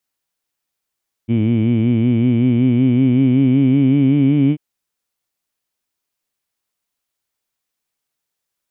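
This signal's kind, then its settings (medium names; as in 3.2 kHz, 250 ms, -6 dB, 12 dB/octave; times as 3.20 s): formant-synthesis vowel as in heed, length 3.29 s, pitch 111 Hz, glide +4.5 st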